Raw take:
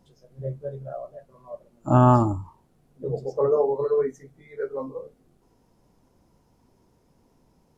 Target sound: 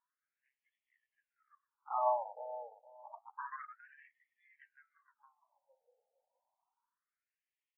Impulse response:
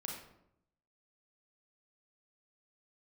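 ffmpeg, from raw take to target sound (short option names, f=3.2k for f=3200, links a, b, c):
-filter_complex "[0:a]aeval=exprs='0.596*(cos(1*acos(clip(val(0)/0.596,-1,1)))-cos(1*PI/2))+0.168*(cos(3*acos(clip(val(0)/0.596,-1,1)))-cos(3*PI/2))+0.0944*(cos(4*acos(clip(val(0)/0.596,-1,1)))-cos(4*PI/2))+0.0376*(cos(5*acos(clip(val(0)/0.596,-1,1)))-cos(5*PI/2))+0.0266*(cos(8*acos(clip(val(0)/0.596,-1,1)))-cos(8*PI/2))':c=same,asplit=2[a][b];[b]adelay=463,lowpass=f=910:p=1,volume=-10dB,asplit=2[c][d];[d]adelay=463,lowpass=f=910:p=1,volume=0.24,asplit=2[e][f];[f]adelay=463,lowpass=f=910:p=1,volume=0.24[g];[a][c][e][g]amix=inputs=4:normalize=0,afftfilt=real='re*between(b*sr/1024,630*pow(2500/630,0.5+0.5*sin(2*PI*0.29*pts/sr))/1.41,630*pow(2500/630,0.5+0.5*sin(2*PI*0.29*pts/sr))*1.41)':imag='im*between(b*sr/1024,630*pow(2500/630,0.5+0.5*sin(2*PI*0.29*pts/sr))/1.41,630*pow(2500/630,0.5+0.5*sin(2*PI*0.29*pts/sr))*1.41)':win_size=1024:overlap=0.75,volume=-8dB"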